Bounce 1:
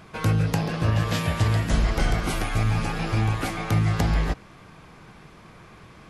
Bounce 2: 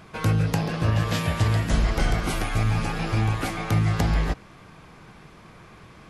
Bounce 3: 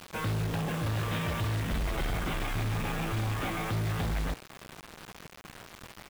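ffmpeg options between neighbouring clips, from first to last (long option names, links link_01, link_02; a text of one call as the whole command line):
ffmpeg -i in.wav -af anull out.wav
ffmpeg -i in.wav -af "aresample=8000,asoftclip=type=tanh:threshold=-28dB,aresample=44100,acrusher=bits=6:mix=0:aa=0.000001" out.wav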